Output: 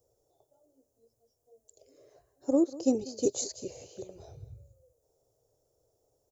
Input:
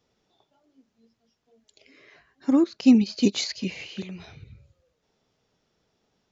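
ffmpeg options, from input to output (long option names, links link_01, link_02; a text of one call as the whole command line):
ffmpeg -i in.wav -af "firequalizer=gain_entry='entry(130,0);entry(190,-25);entry(280,-7);entry(520,6);entry(1000,-12);entry(2100,-28);entry(8400,13)':delay=0.05:min_phase=1,aecho=1:1:193:0.119" out.wav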